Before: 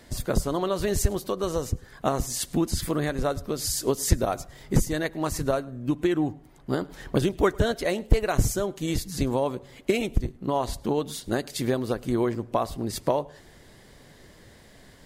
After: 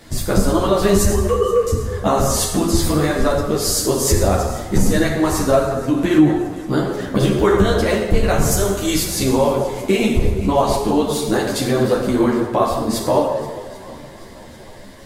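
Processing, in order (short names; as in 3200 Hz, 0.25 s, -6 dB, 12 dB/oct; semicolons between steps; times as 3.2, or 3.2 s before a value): 1.13–1.67 sine-wave speech; 8.51–9.23 tilt +2 dB/oct; swung echo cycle 0.792 s, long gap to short 1.5:1, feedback 48%, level -20.5 dB; vocal rider 2 s; plate-style reverb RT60 1.4 s, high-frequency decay 0.65×, DRR 0 dB; maximiser +11 dB; ensemble effect; gain -1 dB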